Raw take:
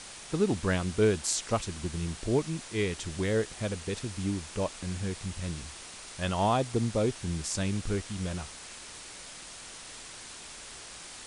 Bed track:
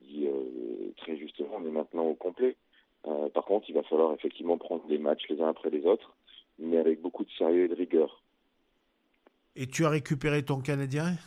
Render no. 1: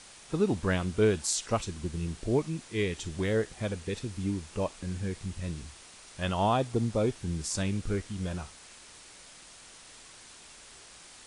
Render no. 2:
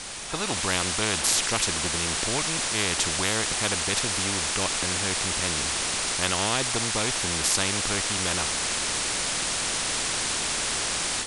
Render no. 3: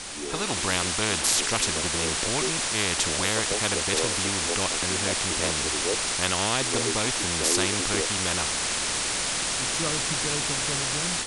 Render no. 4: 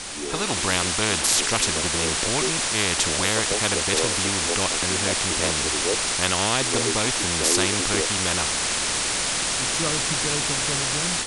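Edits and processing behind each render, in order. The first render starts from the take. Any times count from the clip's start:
noise print and reduce 6 dB
AGC gain up to 10 dB; spectral compressor 4:1
add bed track -6 dB
gain +3 dB; limiter -3 dBFS, peak gain reduction 2.5 dB

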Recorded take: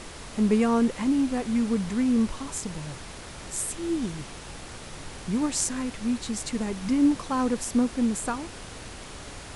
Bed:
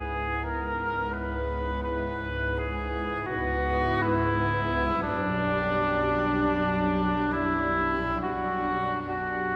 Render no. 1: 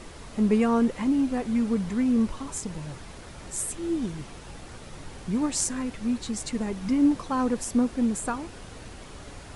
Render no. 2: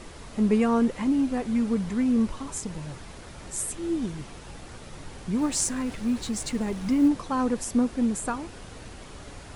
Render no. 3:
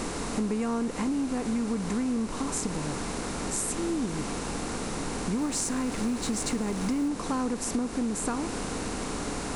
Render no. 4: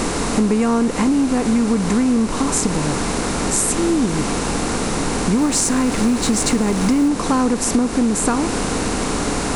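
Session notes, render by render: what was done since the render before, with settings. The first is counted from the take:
denoiser 6 dB, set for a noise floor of -42 dBFS
5.38–7.08 G.711 law mismatch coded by mu
per-bin compression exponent 0.6; compressor, threshold -26 dBFS, peak gain reduction 10 dB
gain +12 dB; limiter -1 dBFS, peak gain reduction 1 dB

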